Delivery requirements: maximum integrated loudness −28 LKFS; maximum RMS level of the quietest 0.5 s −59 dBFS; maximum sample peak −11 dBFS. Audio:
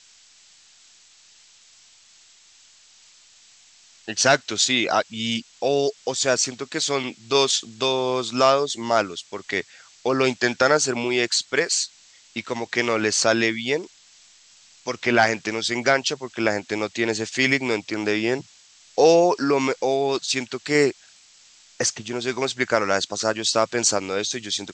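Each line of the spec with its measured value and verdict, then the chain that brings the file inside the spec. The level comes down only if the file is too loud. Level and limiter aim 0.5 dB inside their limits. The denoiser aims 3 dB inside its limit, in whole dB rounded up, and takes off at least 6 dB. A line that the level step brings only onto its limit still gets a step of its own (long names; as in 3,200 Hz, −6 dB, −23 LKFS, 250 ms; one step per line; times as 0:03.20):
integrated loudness −22.0 LKFS: out of spec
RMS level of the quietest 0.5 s −53 dBFS: out of spec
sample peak −4.0 dBFS: out of spec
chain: level −6.5 dB
brickwall limiter −11.5 dBFS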